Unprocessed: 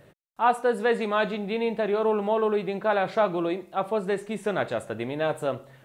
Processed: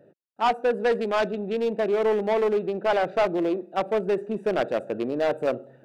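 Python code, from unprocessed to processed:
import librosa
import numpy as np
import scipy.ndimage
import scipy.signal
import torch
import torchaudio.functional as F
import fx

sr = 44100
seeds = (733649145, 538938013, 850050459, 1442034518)

p1 = fx.wiener(x, sr, points=41)
p2 = scipy.signal.sosfilt(scipy.signal.butter(2, 260.0, 'highpass', fs=sr, output='sos'), p1)
p3 = fx.rider(p2, sr, range_db=4, speed_s=2.0)
p4 = p2 + (p3 * 10.0 ** (1.0 / 20.0))
y = 10.0 ** (-16.0 / 20.0) * np.tanh(p4 / 10.0 ** (-16.0 / 20.0))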